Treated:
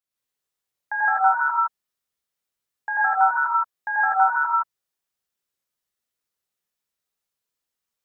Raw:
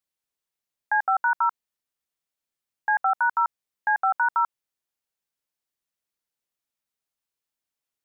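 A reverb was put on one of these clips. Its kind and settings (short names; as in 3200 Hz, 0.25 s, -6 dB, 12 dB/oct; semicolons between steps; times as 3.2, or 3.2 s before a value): non-linear reverb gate 0.19 s rising, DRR -6.5 dB; gain -4.5 dB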